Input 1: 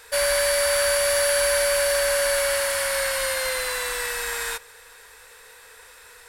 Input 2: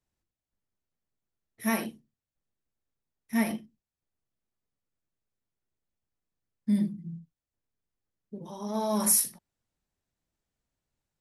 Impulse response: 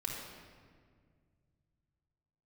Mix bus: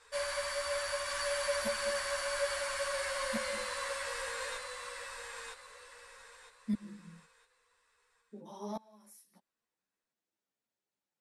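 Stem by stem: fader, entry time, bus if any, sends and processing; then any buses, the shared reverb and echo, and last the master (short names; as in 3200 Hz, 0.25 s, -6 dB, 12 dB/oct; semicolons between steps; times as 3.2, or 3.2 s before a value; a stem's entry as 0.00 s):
-11.0 dB, 0.00 s, no send, echo send -3.5 dB, LPF 9000 Hz 24 dB/oct; bell 1100 Hz +9 dB 0.23 oct
-1.0 dB, 0.00 s, no send, no echo send, HPF 260 Hz 12 dB/oct; high shelf 9400 Hz -6.5 dB; flipped gate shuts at -22 dBFS, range -28 dB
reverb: off
echo: feedback echo 0.959 s, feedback 29%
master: ensemble effect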